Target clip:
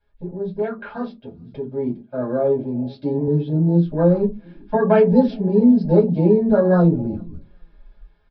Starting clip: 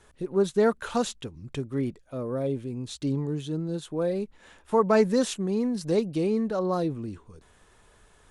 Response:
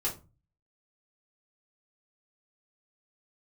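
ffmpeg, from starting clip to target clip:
-filter_complex "[0:a]aecho=1:1:5:0.33,alimiter=limit=-17dB:level=0:latency=1:release=82,aecho=1:1:405|810|1215:0.0668|0.0261|0.0102,afwtdn=0.0178,aresample=11025,aresample=44100[a];[1:a]atrim=start_sample=2205,asetrate=83790,aresample=44100[b];[a][b]afir=irnorm=-1:irlink=0,dynaudnorm=f=350:g=11:m=11.5dB,asettb=1/sr,asplit=3[c][d][e];[c]atrim=end=0.624[f];[d]atrim=start=0.62:end=3.28,asetpts=PTS-STARTPTS,afade=t=in:d=0.004:c=qsin,afade=t=out:st=2.656:d=0.004:c=qsin,highpass=f=250:p=1[g];[e]atrim=start=3.276[h];[f][g]acrossfade=d=0.004:c1=hsin:c2=qsin[i];[i][h]acrossfade=d=0.004:c1=qsin:c2=hsin,volume=1dB"

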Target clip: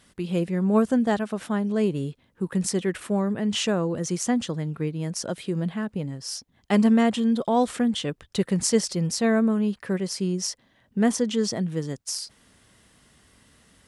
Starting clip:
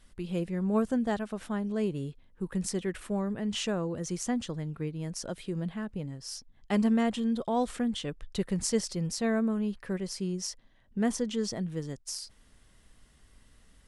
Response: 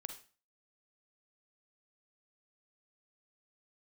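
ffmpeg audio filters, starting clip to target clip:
-af "highpass=100,volume=7dB"

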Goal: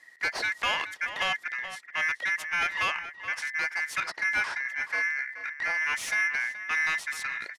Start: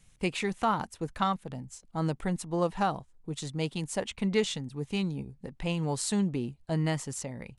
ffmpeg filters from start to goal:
-filter_complex "[0:a]aeval=exprs='val(0)*sin(2*PI*1900*n/s)':c=same,asettb=1/sr,asplit=3[a][b][c];[a]atrim=end=4.164[d];[b]atrim=start=4.16:end=5.87,asetpts=PTS-STARTPTS,afade=t=in:d=0.004:c=qsin,afade=t=out:st=1.706:d=0.004:c=qsin,acrossover=split=3100[e][f];[f]acompressor=threshold=-49dB:ratio=4:attack=1:release=60[g];[e][g]amix=inputs=2:normalize=0[h];[c]atrim=start=5.866[i];[d][h]acrossfade=d=0.004:c1=hsin:c2=qsin[j];[j][i]acrossfade=d=0.004:c1=qsin:c2=hsin,asplit=2[k][l];[l]highpass=f=720:p=1,volume=19dB,asoftclip=type=tanh:threshold=-14dB[m];[k][m]amix=inputs=2:normalize=0,lowpass=f=2.5k:p=1,volume=-6dB,asplit=2[n][o];[o]adelay=425.7,volume=-11dB,highshelf=f=4k:g=-9.58[p];[n][p]amix=inputs=2:normalize=0,volume=-2.5dB"

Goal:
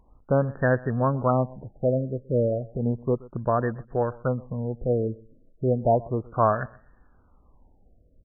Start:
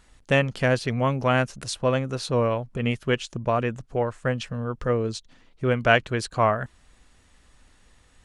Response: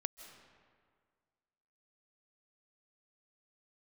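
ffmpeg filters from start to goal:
-af "aecho=1:1:126|252:0.0794|0.0183,afftfilt=real='re*lt(b*sr/1024,640*pow(1900/640,0.5+0.5*sin(2*PI*0.33*pts/sr)))':imag='im*lt(b*sr/1024,640*pow(1900/640,0.5+0.5*sin(2*PI*0.33*pts/sr)))':win_size=1024:overlap=0.75"

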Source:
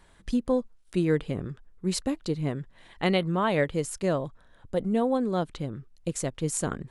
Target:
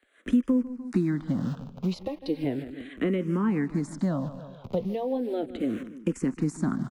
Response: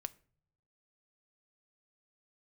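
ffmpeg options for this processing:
-filter_complex "[0:a]acrossover=split=530|1500[a][b][c];[a]acrusher=bits=7:mix=0:aa=0.000001[d];[b]flanger=delay=20:depth=2.8:speed=2.3[e];[c]alimiter=level_in=2.5dB:limit=-24dB:level=0:latency=1,volume=-2.5dB[f];[d][e][f]amix=inputs=3:normalize=0,asettb=1/sr,asplit=3[g][h][i];[g]atrim=end=1.994[j];[h]atrim=start=1.99:end=2.44,asetpts=PTS-STARTPTS,afade=t=in:d=0.004:c=qsin,afade=t=out:st=0.446:d=0.004:c=qsin,aecho=1:1:3.7:0.75,atrim=end_sample=19845[k];[i]atrim=start=2.436[l];[j][k]acrossfade=d=0.004:c1=hsin:c2=qsin[m];[m][l]acrossfade=d=0.004:c1=qsin:c2=hsin,aecho=1:1:149|298|447:0.112|0.0438|0.0171,dynaudnorm=f=110:g=3:m=14.5dB,equalizer=f=250:w=1.7:g=12.5,acrossover=split=100|520[n][o][p];[n]acompressor=threshold=-48dB:ratio=4[q];[o]acompressor=threshold=-23dB:ratio=4[r];[p]acompressor=threshold=-30dB:ratio=4[s];[q][r][s]amix=inputs=3:normalize=0,lowpass=f=2.1k:p=1,asplit=2[t][u];[u]afreqshift=-0.36[v];[t][v]amix=inputs=2:normalize=1,volume=-2dB"

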